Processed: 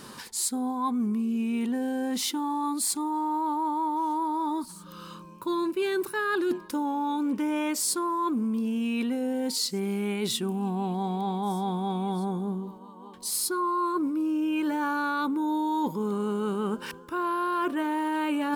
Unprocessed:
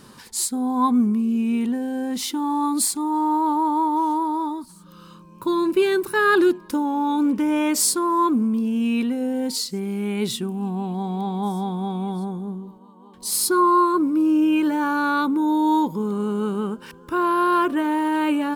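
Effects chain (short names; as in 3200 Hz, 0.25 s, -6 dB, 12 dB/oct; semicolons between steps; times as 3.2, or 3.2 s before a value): low shelf 210 Hz -7.5 dB; reverse; compressor 6:1, threshold -30 dBFS, peak gain reduction 14.5 dB; reverse; gain +4 dB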